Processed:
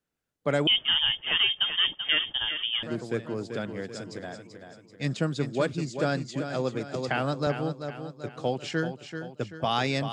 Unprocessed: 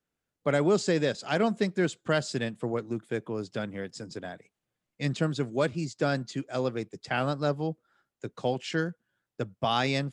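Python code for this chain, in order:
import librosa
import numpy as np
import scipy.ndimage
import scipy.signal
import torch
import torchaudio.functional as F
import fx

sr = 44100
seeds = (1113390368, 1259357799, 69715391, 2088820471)

y = fx.echo_feedback(x, sr, ms=386, feedback_pct=47, wet_db=-8.5)
y = fx.freq_invert(y, sr, carrier_hz=3400, at=(0.67, 2.83))
y = fx.band_squash(y, sr, depth_pct=70, at=(6.94, 7.47))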